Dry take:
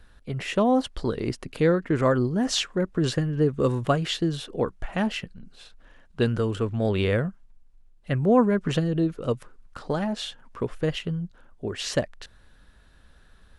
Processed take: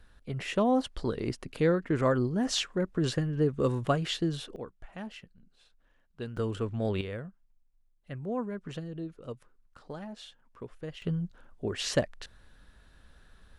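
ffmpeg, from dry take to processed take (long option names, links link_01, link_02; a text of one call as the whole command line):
ffmpeg -i in.wav -af "asetnsamples=nb_out_samples=441:pad=0,asendcmd='4.56 volume volume -15.5dB;6.37 volume volume -6dB;7.01 volume volume -14.5dB;11.02 volume volume -2dB',volume=-4.5dB" out.wav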